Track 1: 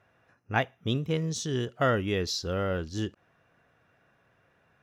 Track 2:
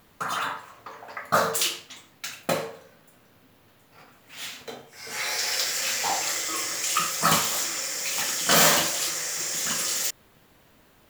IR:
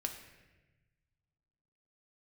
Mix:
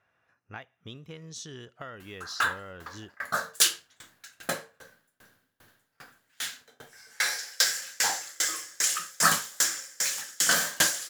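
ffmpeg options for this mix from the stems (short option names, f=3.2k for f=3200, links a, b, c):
-filter_complex "[0:a]equalizer=f=1.4k:w=0.63:g=6.5,acompressor=threshold=-28dB:ratio=6,volume=-12dB[a];[1:a]equalizer=f=1.6k:t=o:w=0.33:g=12,equalizer=f=2.5k:t=o:w=0.33:g=-4,equalizer=f=10k:t=o:w=0.33:g=3,aeval=exprs='val(0)*pow(10,-32*if(lt(mod(2.5*n/s,1),2*abs(2.5)/1000),1-mod(2.5*n/s,1)/(2*abs(2.5)/1000),(mod(2.5*n/s,1)-2*abs(2.5)/1000)/(1-2*abs(2.5)/1000))/20)':c=same,adelay=2000,volume=0.5dB[b];[a][b]amix=inputs=2:normalize=0,equalizer=f=7.9k:t=o:w=2.8:g=7"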